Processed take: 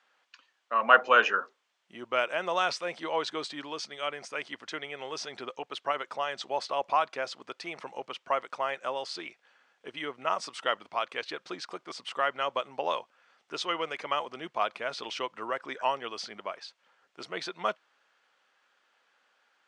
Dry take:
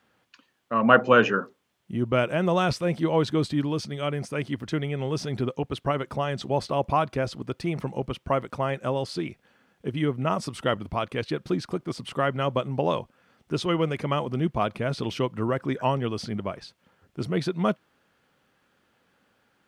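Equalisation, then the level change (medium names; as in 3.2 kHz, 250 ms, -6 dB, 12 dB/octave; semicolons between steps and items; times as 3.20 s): high-pass 760 Hz 12 dB/octave; low-pass 7.6 kHz 24 dB/octave; 0.0 dB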